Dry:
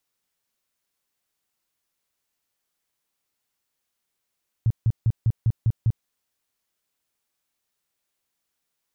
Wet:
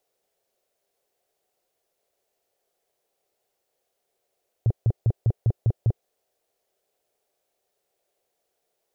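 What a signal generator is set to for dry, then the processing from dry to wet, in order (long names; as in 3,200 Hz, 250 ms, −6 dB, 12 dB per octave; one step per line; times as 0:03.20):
tone bursts 113 Hz, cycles 5, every 0.20 s, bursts 7, −15.5 dBFS
flat-topped bell 530 Hz +15.5 dB 1.3 octaves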